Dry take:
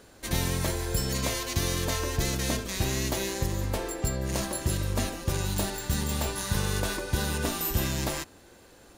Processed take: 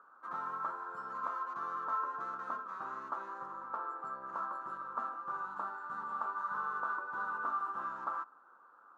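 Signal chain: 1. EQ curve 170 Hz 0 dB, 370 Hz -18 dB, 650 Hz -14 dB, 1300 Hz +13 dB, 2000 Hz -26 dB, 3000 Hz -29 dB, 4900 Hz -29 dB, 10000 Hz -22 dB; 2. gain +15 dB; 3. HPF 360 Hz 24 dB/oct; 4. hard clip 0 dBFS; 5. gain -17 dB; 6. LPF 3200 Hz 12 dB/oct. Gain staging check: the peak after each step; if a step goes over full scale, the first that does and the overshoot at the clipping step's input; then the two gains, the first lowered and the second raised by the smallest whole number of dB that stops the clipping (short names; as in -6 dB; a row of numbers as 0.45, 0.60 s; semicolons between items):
-15.5, -0.5, -4.5, -4.5, -21.5, -21.5 dBFS; no overload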